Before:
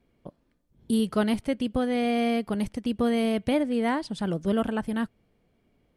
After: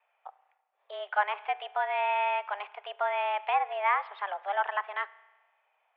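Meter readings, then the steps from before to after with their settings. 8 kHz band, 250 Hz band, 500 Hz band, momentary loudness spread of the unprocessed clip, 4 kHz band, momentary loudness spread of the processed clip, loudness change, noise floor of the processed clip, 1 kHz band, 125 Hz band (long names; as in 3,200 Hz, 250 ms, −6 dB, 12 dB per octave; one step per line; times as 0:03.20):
below −35 dB, below −40 dB, −6.5 dB, 6 LU, −5.5 dB, 10 LU, −3.5 dB, −75 dBFS, +6.5 dB, below −40 dB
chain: spring reverb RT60 1.2 s, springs 33 ms, chirp 50 ms, DRR 18 dB
treble cut that deepens with the level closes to 2,100 Hz, closed at −18.5 dBFS
single-sideband voice off tune +200 Hz 570–2,700 Hz
level +4 dB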